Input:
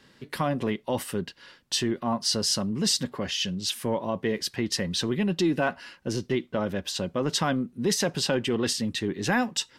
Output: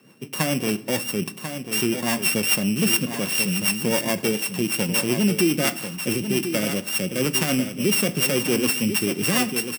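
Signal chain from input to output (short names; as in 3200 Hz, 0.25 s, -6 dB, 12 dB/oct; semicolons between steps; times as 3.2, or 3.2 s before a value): sample sorter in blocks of 16 samples; HPF 120 Hz 24 dB/oct; high shelf 7900 Hz +10 dB; in parallel at -1 dB: limiter -17 dBFS, peak gain reduction 13.5 dB; on the sum: rotary speaker horn 7 Hz; echo 1.042 s -8.5 dB; on a send at -14 dB: reverb RT60 0.90 s, pre-delay 6 ms; on the sum: mismatched tape noise reduction decoder only; gain +2 dB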